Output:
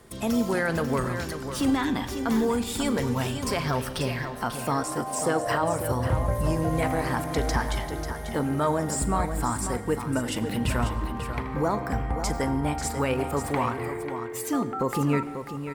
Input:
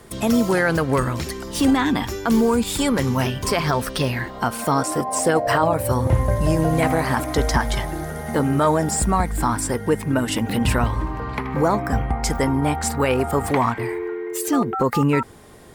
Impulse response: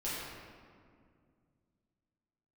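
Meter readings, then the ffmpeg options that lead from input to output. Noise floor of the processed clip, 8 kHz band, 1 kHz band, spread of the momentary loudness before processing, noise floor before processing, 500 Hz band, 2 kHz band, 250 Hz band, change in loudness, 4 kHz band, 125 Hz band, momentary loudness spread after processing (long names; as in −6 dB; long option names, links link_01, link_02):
−35 dBFS, −6.5 dB, −6.0 dB, 7 LU, −34 dBFS, −6.0 dB, −6.5 dB, −6.0 dB, −6.0 dB, −6.5 dB, −6.0 dB, 6 LU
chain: -filter_complex "[0:a]aecho=1:1:41|542:0.141|0.355,asplit=2[link_01][link_02];[1:a]atrim=start_sample=2205,asetrate=74970,aresample=44100,adelay=84[link_03];[link_02][link_03]afir=irnorm=-1:irlink=0,volume=-15dB[link_04];[link_01][link_04]amix=inputs=2:normalize=0,volume=-7dB"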